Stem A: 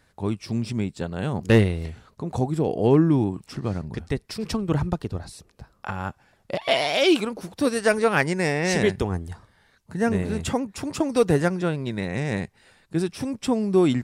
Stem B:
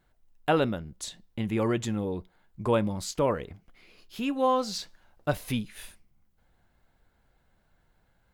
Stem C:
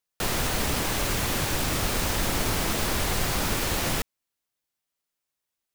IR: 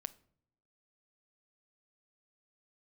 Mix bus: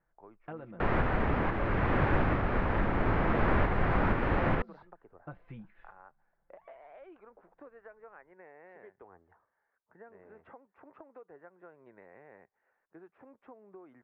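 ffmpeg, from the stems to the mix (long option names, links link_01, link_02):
-filter_complex "[0:a]acrossover=split=410 2100:gain=0.0708 1 0.224[link_01][link_02][link_03];[link_01][link_02][link_03]amix=inputs=3:normalize=0,acompressor=threshold=-33dB:ratio=8,volume=-15.5dB,asplit=2[link_04][link_05];[1:a]aecho=1:1:5.9:0.69,acompressor=threshold=-27dB:ratio=5,volume=-13.5dB[link_06];[2:a]adelay=600,volume=2.5dB[link_07];[link_05]apad=whole_len=279676[link_08];[link_07][link_08]sidechaincompress=threshold=-48dB:ratio=8:attack=6.6:release=846[link_09];[link_04][link_06][link_09]amix=inputs=3:normalize=0,lowpass=frequency=1900:width=0.5412,lowpass=frequency=1900:width=1.3066"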